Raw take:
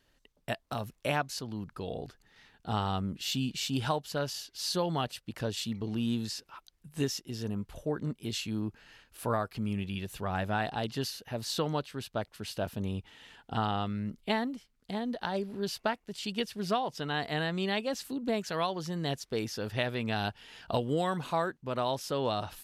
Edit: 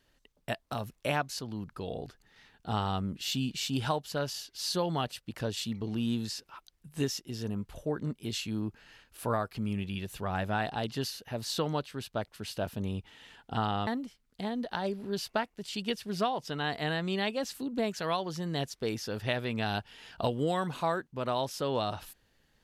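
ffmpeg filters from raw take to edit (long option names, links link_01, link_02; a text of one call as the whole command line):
ffmpeg -i in.wav -filter_complex "[0:a]asplit=2[link_01][link_02];[link_01]atrim=end=13.872[link_03];[link_02]atrim=start=14.368[link_04];[link_03][link_04]acrossfade=duration=0.004:curve1=hsin:curve2=hsin" out.wav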